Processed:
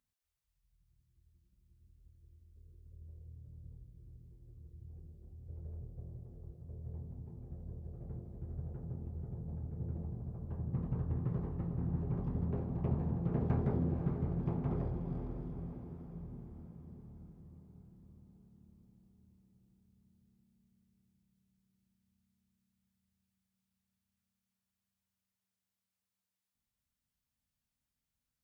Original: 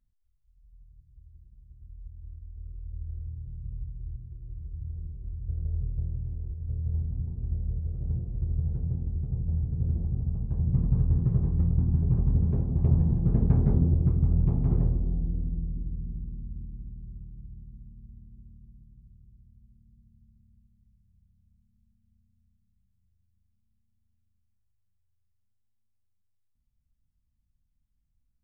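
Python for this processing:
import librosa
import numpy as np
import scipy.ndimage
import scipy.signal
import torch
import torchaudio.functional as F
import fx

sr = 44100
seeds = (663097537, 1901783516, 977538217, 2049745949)

p1 = fx.highpass(x, sr, hz=630.0, slope=6)
p2 = p1 + fx.echo_diffused(p1, sr, ms=511, feedback_pct=57, wet_db=-8.5, dry=0)
y = p2 * librosa.db_to_amplitude(2.5)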